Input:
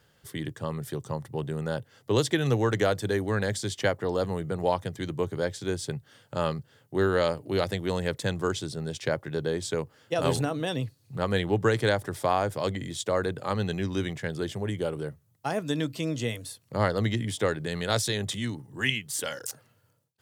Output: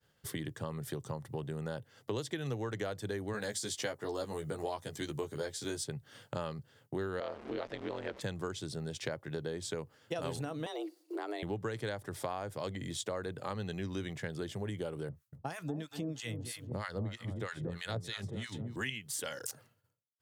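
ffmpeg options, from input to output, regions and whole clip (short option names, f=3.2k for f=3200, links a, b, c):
-filter_complex "[0:a]asettb=1/sr,asplit=3[a][b][c];[a]atrim=end=3.334[d];[b]atrim=start=3.33:end=5.84,asetpts=PTS-STARTPTS,afade=t=in:d=0.004:c=qsin,afade=t=out:st=2.506:d=0.004:c=qsin,bass=f=250:g=-4,treble=f=4k:g=7,asplit=2[e][f];[f]adelay=14,volume=-3dB[g];[e][g]amix=inputs=2:normalize=0,atrim=end_sample=110691[h];[c]atrim=start=5.836[i];[d][h]acrossfade=d=0.004:c1=hsin:c2=qsin[j];[j][i]acrossfade=d=0.004:c1=qsin:c2=hsin,asettb=1/sr,asplit=3[k][l][m];[k]atrim=end=7.204[n];[l]atrim=start=7.2:end=8.21,asetpts=PTS-STARTPTS,afade=t=in:d=0.004:c=qsin,afade=t=out:st=1.006:d=0.004:c=qsin,aeval=exprs='val(0)+0.5*0.02*sgn(val(0))':c=same,highpass=260,lowpass=3.3k,aeval=exprs='val(0)*sin(2*PI*66*n/s)':c=same[o];[m]atrim=start=8.206[p];[n][o]acrossfade=d=0.004:c1=hsin:c2=qsin[q];[q][p]acrossfade=d=0.004:c1=qsin:c2=hsin,asettb=1/sr,asplit=3[r][s][t];[r]atrim=end=10.664[u];[s]atrim=start=10.66:end=11.43,asetpts=PTS-STARTPTS,afade=t=in:d=0.004:c=qsin,afade=t=out:st=0.766:d=0.004:c=qsin,acompressor=threshold=-29dB:ratio=6:attack=3.2:release=140:knee=1:detection=peak,afreqshift=210[v];[t]atrim=start=11.426[w];[u][v]acrossfade=d=0.004:c1=hsin:c2=qsin[x];[x][w]acrossfade=d=0.004:c1=qsin:c2=hsin,asettb=1/sr,asplit=3[y][z][aa];[y]atrim=end=15.094[ab];[z]atrim=start=15.09:end=18.76,asetpts=PTS-STARTPTS,afade=t=in:d=0.004:c=qsin,afade=t=out:st=3.666:d=0.004:c=qsin,lowshelf=f=150:g=7.5,asplit=2[ac][ad];[ad]adelay=233,lowpass=f=3.9k:p=1,volume=-10.5dB,asplit=2[ae][af];[af]adelay=233,lowpass=f=3.9k:p=1,volume=0.39,asplit=2[ag][ah];[ah]adelay=233,lowpass=f=3.9k:p=1,volume=0.39,asplit=2[ai][aj];[aj]adelay=233,lowpass=f=3.9k:p=1,volume=0.39[ak];[ac][ae][ag][ai][ak]amix=inputs=5:normalize=0,atrim=end_sample=161847,acrossover=split=1000[al][am];[al]aeval=exprs='val(0)*(1-1/2+1/2*cos(2*PI*3.1*n/s))':c=same[an];[am]aeval=exprs='val(0)*(1-1/2-1/2*cos(2*PI*3.1*n/s))':c=same[ao];[an][ao]amix=inputs=2:normalize=0[ap];[aa]atrim=start=18.756[aq];[ab][ap]acrossfade=d=0.004:c1=hsin:c2=qsin[ar];[ar][aq]acrossfade=d=0.004:c1=qsin:c2=hsin,acompressor=threshold=-41dB:ratio=4,agate=range=-33dB:threshold=-55dB:ratio=3:detection=peak,volume=3.5dB"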